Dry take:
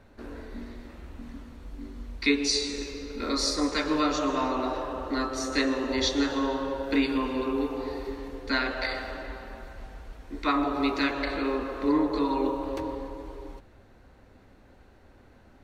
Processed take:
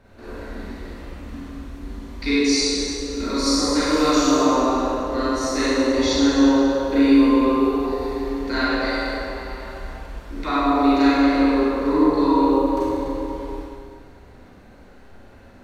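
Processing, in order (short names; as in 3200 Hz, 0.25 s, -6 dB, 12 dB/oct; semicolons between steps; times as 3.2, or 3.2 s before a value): 3.86–4.37 high shelf 4300 Hz +11 dB; Schroeder reverb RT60 1.7 s, combs from 32 ms, DRR -8.5 dB; dynamic EQ 2600 Hz, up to -6 dB, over -37 dBFS, Q 0.71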